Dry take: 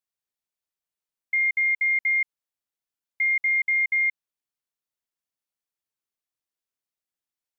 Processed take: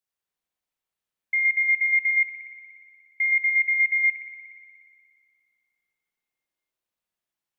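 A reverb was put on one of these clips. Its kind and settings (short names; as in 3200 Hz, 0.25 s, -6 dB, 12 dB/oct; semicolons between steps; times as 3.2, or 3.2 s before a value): spring tank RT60 2.2 s, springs 53 ms, chirp 35 ms, DRR -3 dB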